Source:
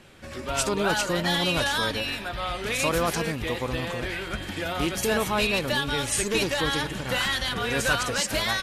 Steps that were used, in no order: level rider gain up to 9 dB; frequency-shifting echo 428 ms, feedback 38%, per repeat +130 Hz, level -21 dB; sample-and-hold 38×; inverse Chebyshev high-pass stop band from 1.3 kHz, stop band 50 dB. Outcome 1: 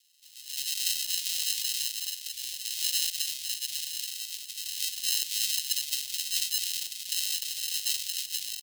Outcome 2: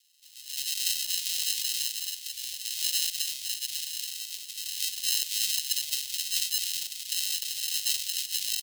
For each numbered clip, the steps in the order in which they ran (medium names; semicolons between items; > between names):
level rider > frequency-shifting echo > sample-and-hold > inverse Chebyshev high-pass; sample-and-hold > inverse Chebyshev high-pass > frequency-shifting echo > level rider